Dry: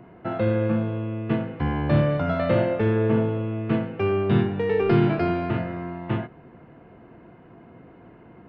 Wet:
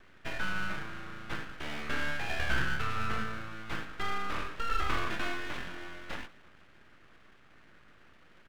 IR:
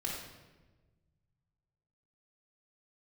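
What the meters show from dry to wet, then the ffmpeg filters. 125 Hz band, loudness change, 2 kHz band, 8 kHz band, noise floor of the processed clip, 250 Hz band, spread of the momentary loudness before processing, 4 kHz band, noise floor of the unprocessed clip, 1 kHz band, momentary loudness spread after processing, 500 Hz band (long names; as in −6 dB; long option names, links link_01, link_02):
−19.0 dB, −12.0 dB, +1.0 dB, can't be measured, −58 dBFS, −19.5 dB, 9 LU, +2.0 dB, −49 dBFS, −5.0 dB, 11 LU, −21.5 dB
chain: -af "highpass=frequency=390:width_type=q:width=0.5412,highpass=frequency=390:width_type=q:width=1.307,lowpass=frequency=2500:width_type=q:width=0.5176,lowpass=frequency=2500:width_type=q:width=0.7071,lowpass=frequency=2500:width_type=q:width=1.932,afreqshift=220,aecho=1:1:167|334|501|668|835:0.0891|0.0526|0.031|0.0183|0.0108,aeval=exprs='abs(val(0))':channel_layout=same,volume=-3.5dB"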